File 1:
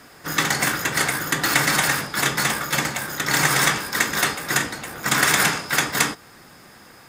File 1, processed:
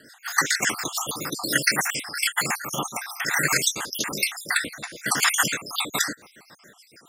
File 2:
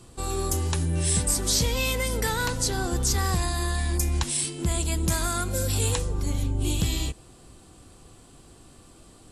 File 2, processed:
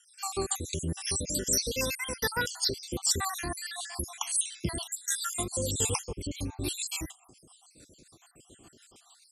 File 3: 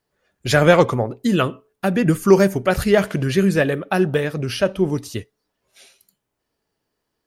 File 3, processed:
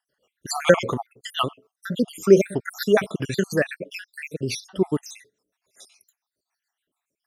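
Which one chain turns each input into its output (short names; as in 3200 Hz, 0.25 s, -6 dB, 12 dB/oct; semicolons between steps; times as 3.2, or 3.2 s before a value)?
random spectral dropouts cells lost 65%; HPF 210 Hz 6 dB/oct; bell 6500 Hz +3.5 dB 2.1 oct; rotary speaker horn 7 Hz; gain +2 dB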